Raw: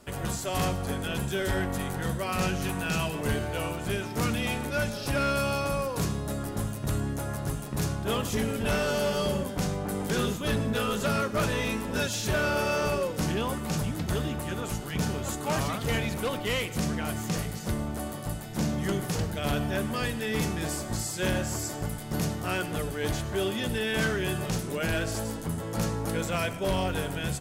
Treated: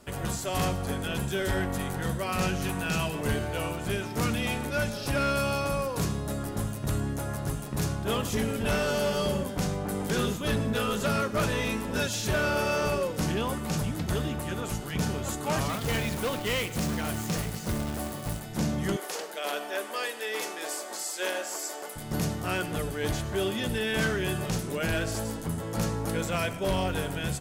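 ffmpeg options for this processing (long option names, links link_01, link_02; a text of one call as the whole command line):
ffmpeg -i in.wav -filter_complex "[0:a]asettb=1/sr,asplit=3[link_01][link_02][link_03];[link_01]atrim=end=15.694[link_04];[link_02]atrim=start=15.69:end=18.4,asetpts=PTS-STARTPTS,afade=type=in:duration=0.004:curve=qsin,afade=type=out:start_time=2.706:duration=0.004:curve=qsin,acrusher=bits=2:mode=log:mix=0:aa=0.000001[link_05];[link_03]atrim=start=18.396[link_06];[link_04][link_05]acrossfade=duration=0.004:curve1=hsin:curve2=qsin[link_07];[link_07][link_06]acrossfade=duration=0.004:curve1=qsin:curve2=hsin,asettb=1/sr,asplit=3[link_08][link_09][link_10];[link_08]atrim=end=18.964[link_11];[link_09]atrim=start=18.96:end=21.96,asetpts=PTS-STARTPTS,afade=type=in:duration=0.004:curve=qsin,afade=type=out:start_time=2.996:duration=0.004:curve=qsin,highpass=frequency=400:width=0.5412,highpass=frequency=400:width=1.3066[link_12];[link_10]atrim=start=21.956[link_13];[link_11][link_12]acrossfade=duration=0.004:curve1=hsin:curve2=qsin[link_14];[link_14][link_13]acrossfade=duration=0.004:curve1=qsin:curve2=hsin" out.wav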